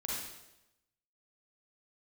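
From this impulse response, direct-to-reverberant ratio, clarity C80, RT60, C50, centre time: −5.0 dB, 2.0 dB, 0.90 s, −2.0 dB, 77 ms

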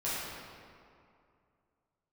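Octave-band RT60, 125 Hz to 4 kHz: 2.7, 2.5, 2.4, 2.4, 1.9, 1.4 seconds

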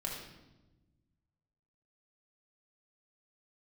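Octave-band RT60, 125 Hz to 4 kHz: 2.1, 1.8, 1.2, 0.95, 0.85, 0.85 seconds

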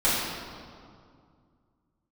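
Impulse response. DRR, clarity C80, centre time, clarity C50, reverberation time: −11.0 dB, 0.5 dB, 119 ms, −2.0 dB, 2.2 s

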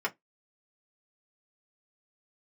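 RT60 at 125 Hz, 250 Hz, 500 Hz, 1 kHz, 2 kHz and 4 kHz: 0.15, 0.15, 0.15, 0.15, 0.15, 0.10 seconds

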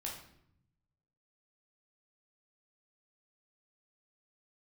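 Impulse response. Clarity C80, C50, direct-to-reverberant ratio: 8.5 dB, 5.0 dB, −3.0 dB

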